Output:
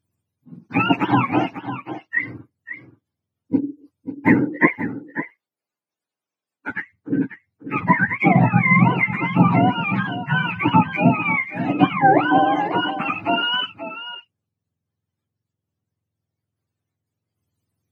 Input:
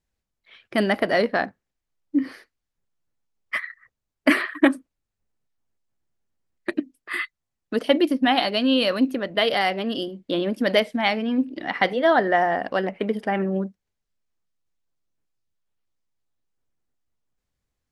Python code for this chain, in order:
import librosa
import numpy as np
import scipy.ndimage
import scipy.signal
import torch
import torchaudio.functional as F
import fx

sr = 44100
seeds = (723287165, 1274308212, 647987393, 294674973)

p1 = fx.octave_mirror(x, sr, pivot_hz=740.0)
p2 = fx.highpass(p1, sr, hz=480.0, slope=12, at=(4.68, 6.71))
p3 = p2 + fx.echo_single(p2, sr, ms=540, db=-11.5, dry=0)
p4 = fx.record_warp(p3, sr, rpm=33.33, depth_cents=100.0)
y = p4 * librosa.db_to_amplitude(5.0)